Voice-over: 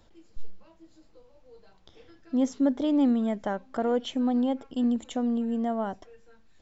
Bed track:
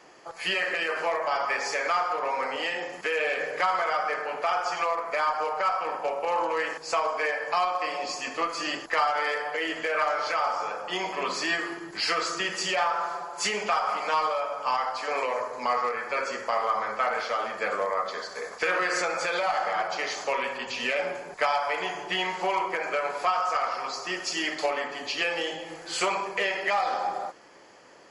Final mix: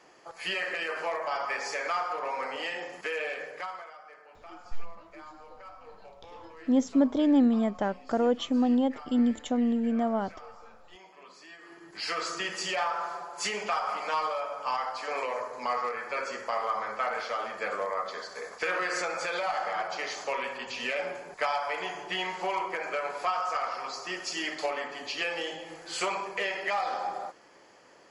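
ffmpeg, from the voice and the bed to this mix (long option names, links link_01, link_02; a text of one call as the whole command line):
ffmpeg -i stem1.wav -i stem2.wav -filter_complex "[0:a]adelay=4350,volume=1dB[link_01];[1:a]volume=14dB,afade=type=out:start_time=3.04:duration=0.89:silence=0.125893,afade=type=in:start_time=11.59:duration=0.68:silence=0.11885[link_02];[link_01][link_02]amix=inputs=2:normalize=0" out.wav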